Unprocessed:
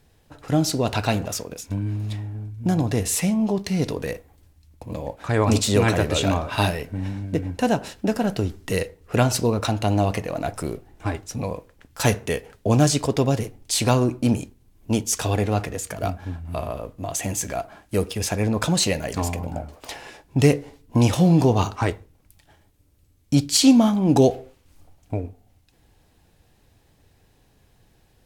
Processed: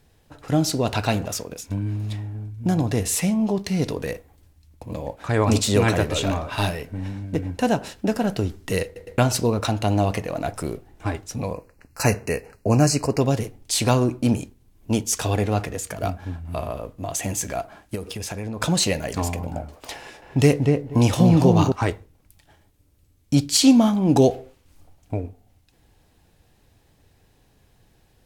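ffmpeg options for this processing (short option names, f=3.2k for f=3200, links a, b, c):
-filter_complex "[0:a]asettb=1/sr,asplit=3[a][b][c];[a]atrim=end=6.044[d];[b]atrim=start=6.04:end=7.36,asetpts=PTS-STARTPTS,afade=t=in:d=0.004:c=qsin,afade=t=out:st=1.316:d=0.004:c=qsin,aeval=exprs='(tanh(3.55*val(0)+0.4)-tanh(0.4))/3.55':c=same[e];[c]atrim=start=7.356[f];[d][e]acrossfade=d=0.004:c1=hsin:c2=qsin[g];[g][f]acrossfade=d=0.004:c1=qsin:c2=hsin,asettb=1/sr,asplit=3[h][i][j];[h]atrim=end=11.534[k];[i]atrim=start=11.53:end=13.21,asetpts=PTS-STARTPTS,afade=t=in:d=0.004:c=qsin,afade=t=out:st=1.676:d=0.004:c=qsin,asuperstop=centerf=3400:order=12:qfactor=3[l];[j]atrim=start=13.206[m];[k][l]acrossfade=d=0.004:c1=hsin:c2=qsin[n];[n][m]acrossfade=d=0.004:c1=qsin:c2=hsin,asplit=3[o][p][q];[o]afade=t=out:st=17.94:d=0.02[r];[p]acompressor=threshold=-27dB:ratio=6:attack=3.2:release=140:knee=1:detection=peak,afade=t=in:st=17.94:d=0.02,afade=t=out:st=18.6:d=0.02[s];[q]afade=t=in:st=18.6:d=0.02[t];[r][s][t]amix=inputs=3:normalize=0,asettb=1/sr,asplit=3[u][v][w];[u]atrim=end=19.984[x];[v]atrim=start=19.98:end=21.72,asetpts=PTS-STARTPTS,afade=t=in:d=0.004:c=qsin,afade=t=out:st=1.736:d=0.004:c=qsin,asplit=2[y][z];[z]adelay=239,lowpass=f=1.3k:p=1,volume=-3dB,asplit=2[aa][ab];[ab]adelay=239,lowpass=f=1.3k:p=1,volume=0.17,asplit=2[ac][ad];[ad]adelay=239,lowpass=f=1.3k:p=1,volume=0.17[ae];[y][aa][ac][ae]amix=inputs=4:normalize=0,atrim=end_sample=76734[af];[w]atrim=start=21.716[ag];[x][af]acrossfade=d=0.004:c1=hsin:c2=qsin[ah];[ah][ag]acrossfade=d=0.004:c1=qsin:c2=hsin,asplit=4[ai][aj][ak][al];[ai]atrim=end=8.962[am];[aj]atrim=start=8.848:end=8.962[an];[ak]atrim=start=8.848:end=8.962[ao];[al]atrim=start=9.178[ap];[am][an]acrossfade=d=0.004:c1=hsin:c2=hsin[aq];[aq][ao]acrossfade=d=0.004:c1=hsin:c2=hsin[ar];[ar][ap]acrossfade=d=0.004:c1=hsin:c2=hsin"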